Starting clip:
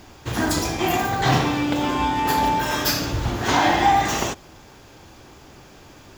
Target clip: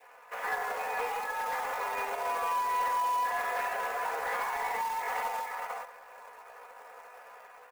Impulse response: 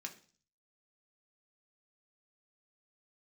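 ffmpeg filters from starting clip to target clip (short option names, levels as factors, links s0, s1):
-filter_complex "[0:a]asplit=2[s0][s1];[s1]adelay=350,highpass=300,lowpass=3400,asoftclip=type=hard:threshold=0.188,volume=0.316[s2];[s0][s2]amix=inputs=2:normalize=0,highpass=f=470:t=q:w=0.5412,highpass=f=470:t=q:w=1.307,lowpass=f=2300:t=q:w=0.5176,lowpass=f=2300:t=q:w=0.7071,lowpass=f=2300:t=q:w=1.932,afreqshift=110,acrossover=split=1800[s3][s4];[s3]dynaudnorm=f=120:g=11:m=1.78[s5];[s5][s4]amix=inputs=2:normalize=0,alimiter=limit=0.266:level=0:latency=1:release=277,acrusher=bits=3:mode=log:mix=0:aa=0.000001,adynamicequalizer=threshold=0.0316:dfrequency=1200:dqfactor=1.9:tfrequency=1200:tqfactor=1.9:attack=5:release=100:ratio=0.375:range=2:mode=cutabove:tftype=bell,atempo=0.8,acompressor=threshold=0.0631:ratio=6,asoftclip=type=tanh:threshold=0.0944,aecho=1:1:4.1:0.53,volume=0.596"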